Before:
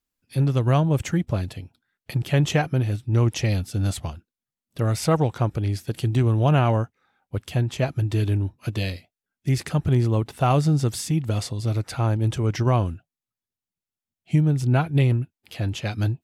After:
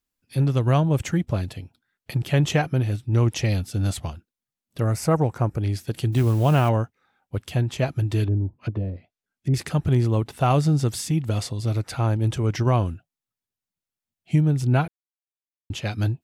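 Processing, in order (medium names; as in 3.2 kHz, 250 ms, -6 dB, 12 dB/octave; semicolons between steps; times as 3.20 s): 4.84–5.61 s: peaking EQ 3.5 kHz -13.5 dB 0.73 oct; 6.12–6.69 s: modulation noise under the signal 28 dB; 8.24–9.54 s: low-pass that closes with the level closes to 520 Hz, closed at -22.5 dBFS; 14.88–15.70 s: mute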